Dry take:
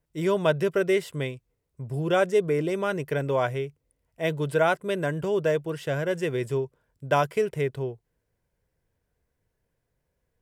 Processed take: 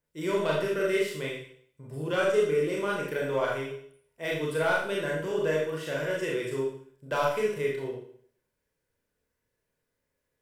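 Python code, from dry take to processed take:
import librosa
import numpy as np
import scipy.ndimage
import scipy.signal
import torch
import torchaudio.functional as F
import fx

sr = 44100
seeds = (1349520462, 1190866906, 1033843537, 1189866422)

y = fx.low_shelf(x, sr, hz=190.0, db=-11.5)
y = 10.0 ** (-14.5 / 20.0) * np.tanh(y / 10.0 ** (-14.5 / 20.0))
y = fx.peak_eq(y, sr, hz=730.0, db=-8.0, octaves=0.35)
y = fx.rev_schroeder(y, sr, rt60_s=0.59, comb_ms=26, drr_db=-3.5)
y = F.gain(torch.from_numpy(y), -4.0).numpy()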